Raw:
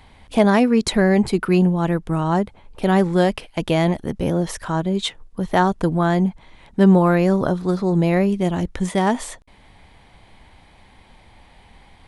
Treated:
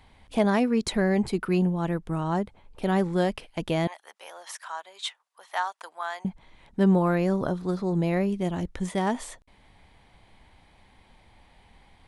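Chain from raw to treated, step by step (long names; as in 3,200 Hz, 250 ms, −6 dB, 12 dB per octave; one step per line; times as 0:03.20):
0:03.87–0:06.25: high-pass filter 810 Hz 24 dB per octave
level −7.5 dB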